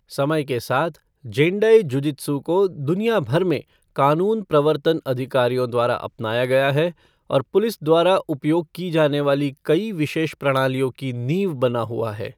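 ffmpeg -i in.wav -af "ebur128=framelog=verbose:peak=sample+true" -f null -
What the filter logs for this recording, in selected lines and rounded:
Integrated loudness:
  I:         -20.7 LUFS
  Threshold: -30.8 LUFS
Loudness range:
  LRA:         1.4 LU
  Threshold: -40.6 LUFS
  LRA low:   -21.5 LUFS
  LRA high:  -20.0 LUFS
Sample peak:
  Peak:       -3.7 dBFS
True peak:
  Peak:       -3.7 dBFS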